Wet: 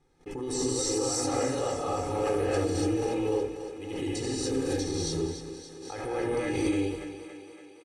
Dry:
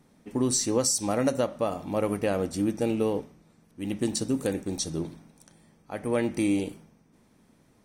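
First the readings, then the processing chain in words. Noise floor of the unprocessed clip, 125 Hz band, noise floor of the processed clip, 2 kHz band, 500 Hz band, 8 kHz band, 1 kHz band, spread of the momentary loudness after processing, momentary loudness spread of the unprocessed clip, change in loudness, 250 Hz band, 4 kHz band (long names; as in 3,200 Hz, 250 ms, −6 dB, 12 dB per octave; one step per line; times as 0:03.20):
−62 dBFS, 0.0 dB, −51 dBFS, 0.0 dB, 0.0 dB, −3.0 dB, +1.5 dB, 14 LU, 11 LU, −2.0 dB, −2.5 dB, −0.5 dB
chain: low-pass filter 8,000 Hz 12 dB per octave
mains-hum notches 60/120/180/240/300/360/420 Hz
noise gate −55 dBFS, range −42 dB
low-shelf EQ 66 Hz +6.5 dB
comb filter 2.4 ms, depth 98%
brickwall limiter −20.5 dBFS, peak gain reduction 9 dB
feedback echo with a high-pass in the loop 283 ms, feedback 64%, high-pass 190 Hz, level −10.5 dB
reverb whose tail is shaped and stops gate 310 ms rising, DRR −7.5 dB
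background raised ahead of every attack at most 37 dB per second
level −8 dB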